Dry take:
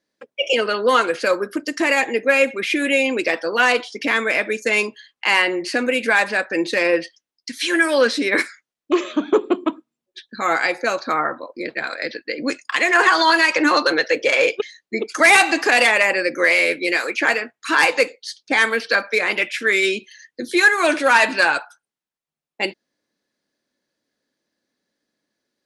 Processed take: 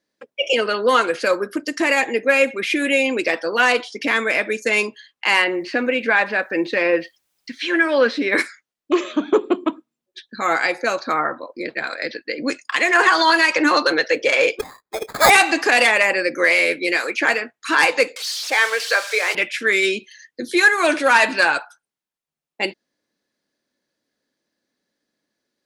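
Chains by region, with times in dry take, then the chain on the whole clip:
0:05.44–0:08.30: low-pass filter 3,300 Hz + bit-depth reduction 12 bits, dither triangular
0:14.59–0:15.30: high-pass filter 460 Hz 24 dB per octave + sample-rate reduction 2,900 Hz
0:18.16–0:19.35: spike at every zero crossing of −13.5 dBFS + inverse Chebyshev high-pass filter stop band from 160 Hz, stop band 50 dB + high-frequency loss of the air 73 metres
whole clip: no processing

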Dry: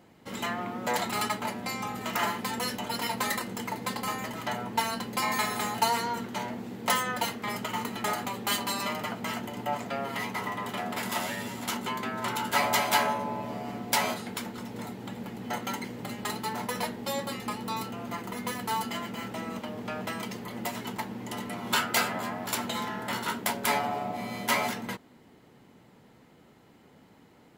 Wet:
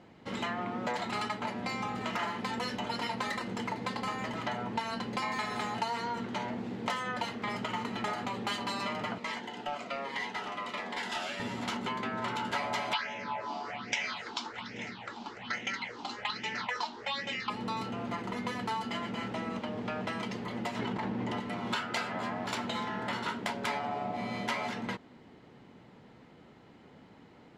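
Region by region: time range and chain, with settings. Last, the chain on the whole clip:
0:09.18–0:11.40: meter weighting curve A + hard clipping −26 dBFS + phaser whose notches keep moving one way falling 1.3 Hz
0:12.93–0:17.50: low-pass filter 5,900 Hz 24 dB per octave + tilt shelving filter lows −10 dB, about 630 Hz + all-pass phaser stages 6, 1.2 Hz, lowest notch 130–1,200 Hz
0:20.79–0:21.40: high-shelf EQ 4,600 Hz −11 dB + log-companded quantiser 8 bits + envelope flattener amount 100%
whole clip: low-pass filter 4,700 Hz 12 dB per octave; downward compressor 4 to 1, threshold −33 dBFS; level +1.5 dB

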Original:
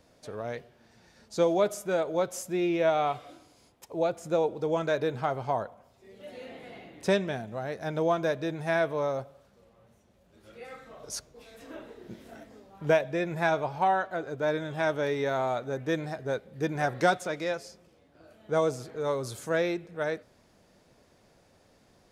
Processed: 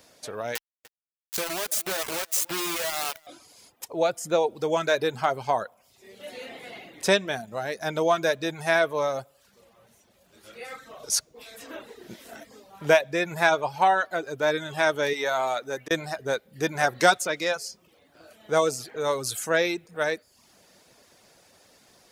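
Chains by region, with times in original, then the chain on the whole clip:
0:00.55–0:03.27: downward compressor 10 to 1, threshold −34 dBFS + bit-depth reduction 6 bits, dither none + single-tap delay 296 ms −19 dB
0:15.13–0:15.91: low-shelf EQ 210 Hz −11.5 dB + volume swells 664 ms
whole clip: reverb reduction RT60 0.51 s; spectral tilt +2.5 dB per octave; level +6 dB

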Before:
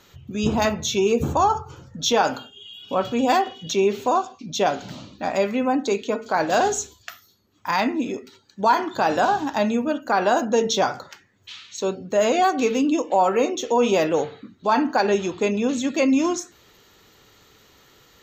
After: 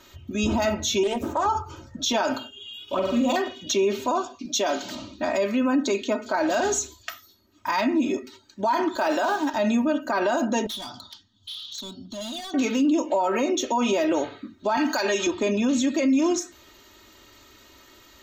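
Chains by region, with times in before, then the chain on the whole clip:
0:01.03–0:01.46: high-pass filter 400 Hz 6 dB per octave + parametric band 6,200 Hz −7 dB 2.5 octaves + highs frequency-modulated by the lows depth 0.32 ms
0:02.83–0:03.36: running median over 3 samples + flanger swept by the level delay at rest 2.5 ms, full sweep at −16 dBFS + flutter between parallel walls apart 8 metres, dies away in 0.7 s
0:04.45–0:04.95: high-pass filter 200 Hz + high-shelf EQ 3,900 Hz +7.5 dB
0:08.96–0:09.54: one scale factor per block 7 bits + high-pass filter 300 Hz
0:10.66–0:12.54: drawn EQ curve 230 Hz 0 dB, 500 Hz −25 dB, 720 Hz −9 dB, 1,200 Hz −8 dB, 2,300 Hz −25 dB, 3,300 Hz +11 dB, 12,000 Hz −16 dB + downward compressor 2 to 1, threshold −36 dBFS + hard clipping −33 dBFS
0:14.77–0:15.27: spectral tilt +3 dB per octave + multiband upward and downward compressor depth 70%
whole clip: comb filter 3.2 ms, depth 84%; brickwall limiter −15 dBFS

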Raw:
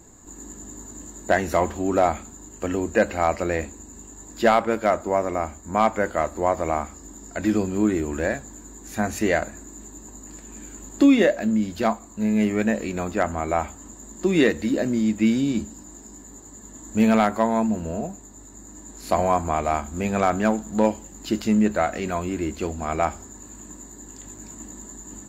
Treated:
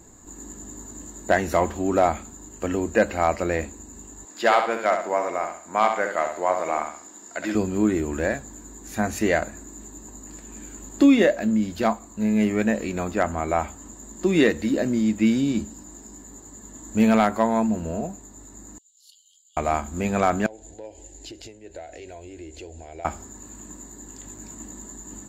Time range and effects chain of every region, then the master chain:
0:04.25–0:07.55: meter weighting curve A + repeating echo 66 ms, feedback 38%, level −6.5 dB
0:18.78–0:19.57: linear-phase brick-wall high-pass 2,800 Hz + high-shelf EQ 5,300 Hz −9.5 dB + noise gate −43 dBFS, range −9 dB
0:20.46–0:23.05: low-pass filter 8,400 Hz + downward compressor 4 to 1, threshold −34 dBFS + phaser with its sweep stopped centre 490 Hz, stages 4
whole clip: no processing

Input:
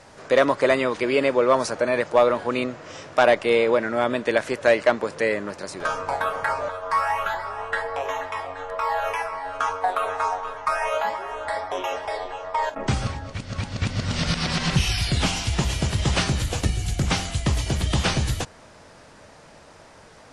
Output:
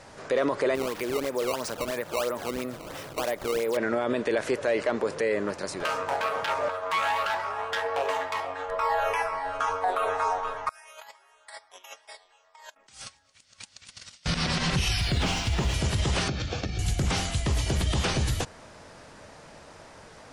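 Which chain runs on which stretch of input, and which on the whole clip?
0:00.75–0:03.77: sample-and-hold swept by an LFO 15×, swing 160% 3 Hz + downward compressor 3 to 1, threshold −30 dBFS
0:05.83–0:08.69: phase distortion by the signal itself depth 0.24 ms + high-pass filter 150 Hz 6 dB per octave
0:10.69–0:14.26: first-order pre-emphasis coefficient 0.97 + noise gate −43 dBFS, range −17 dB + compressor whose output falls as the input rises −45 dBFS, ratio −0.5
0:15.00–0:15.74: running median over 3 samples + high-shelf EQ 6,900 Hz −8 dB
0:16.28–0:16.79: Butterworth low-pass 5,900 Hz + notch comb filter 970 Hz + downward compressor 5 to 1, threshold −26 dBFS
whole clip: dynamic equaliser 420 Hz, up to +6 dB, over −34 dBFS, Q 2.2; brickwall limiter −17 dBFS

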